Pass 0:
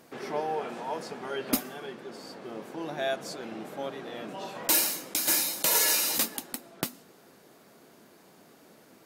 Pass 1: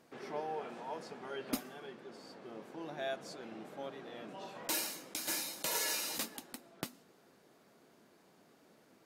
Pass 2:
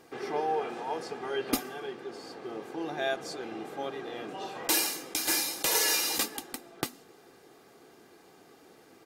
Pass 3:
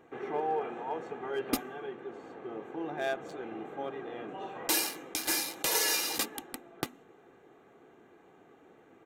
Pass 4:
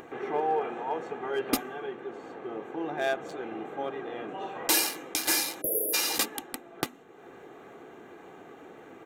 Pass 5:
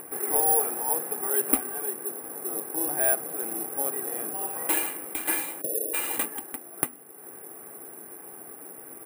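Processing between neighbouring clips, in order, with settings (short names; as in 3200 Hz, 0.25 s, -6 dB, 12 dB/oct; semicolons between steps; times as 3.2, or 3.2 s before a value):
high shelf 11000 Hz -9.5 dB; gain -8.5 dB
comb 2.5 ms, depth 47%; gain +8 dB
Wiener smoothing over 9 samples; gain -1.5 dB
spectral delete 5.61–5.94, 680–10000 Hz; low shelf 230 Hz -4 dB; upward compressor, threshold -44 dBFS; gain +4.5 dB
LPF 2800 Hz 24 dB/oct; careless resampling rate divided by 4×, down none, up zero stuff; requantised 12-bit, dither none; gain -1 dB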